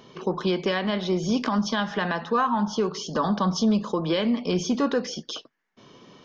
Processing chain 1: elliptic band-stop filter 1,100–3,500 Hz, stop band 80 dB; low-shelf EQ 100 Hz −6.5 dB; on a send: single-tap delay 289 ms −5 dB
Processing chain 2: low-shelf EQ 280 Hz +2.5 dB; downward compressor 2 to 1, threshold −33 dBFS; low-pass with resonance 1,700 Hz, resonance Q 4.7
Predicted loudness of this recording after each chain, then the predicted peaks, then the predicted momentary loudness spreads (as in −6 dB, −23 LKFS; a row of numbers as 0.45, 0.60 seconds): −26.0, −29.5 LKFS; −11.5, −12.5 dBFS; 7, 11 LU